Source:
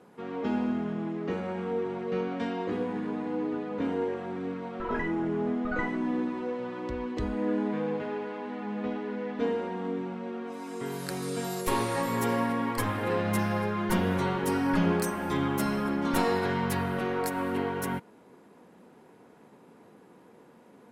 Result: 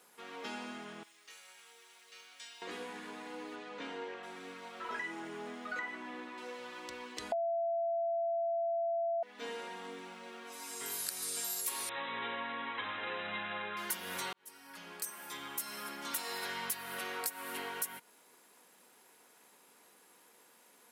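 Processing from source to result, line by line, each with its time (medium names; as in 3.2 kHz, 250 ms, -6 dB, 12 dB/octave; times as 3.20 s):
1.03–2.62 s: differentiator
3.55–4.22 s: low-pass 7.6 kHz -> 3.6 kHz
5.79–6.38 s: tone controls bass -4 dB, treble -11 dB
7.32–9.23 s: bleep 675 Hz -7.5 dBFS
11.89–13.77 s: brick-wall FIR low-pass 4 kHz
14.33–16.81 s: fade in
whole clip: differentiator; compression 4:1, threshold -46 dBFS; trim +10.5 dB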